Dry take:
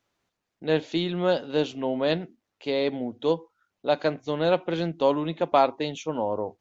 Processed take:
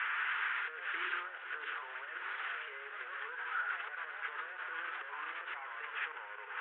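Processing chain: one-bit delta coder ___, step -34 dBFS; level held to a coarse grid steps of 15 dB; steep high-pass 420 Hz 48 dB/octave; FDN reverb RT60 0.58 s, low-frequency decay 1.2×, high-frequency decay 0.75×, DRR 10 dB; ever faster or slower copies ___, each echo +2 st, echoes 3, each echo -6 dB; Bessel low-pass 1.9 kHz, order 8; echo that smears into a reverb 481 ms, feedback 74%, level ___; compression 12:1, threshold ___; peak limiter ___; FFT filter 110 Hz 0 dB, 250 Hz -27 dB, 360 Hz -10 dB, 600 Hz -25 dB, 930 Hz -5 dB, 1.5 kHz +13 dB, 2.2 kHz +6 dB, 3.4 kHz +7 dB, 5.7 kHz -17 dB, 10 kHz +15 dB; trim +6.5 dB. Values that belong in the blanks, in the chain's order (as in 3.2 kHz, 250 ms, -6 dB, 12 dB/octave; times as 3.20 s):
16 kbps, 155 ms, -15 dB, -36 dBFS, -38.5 dBFS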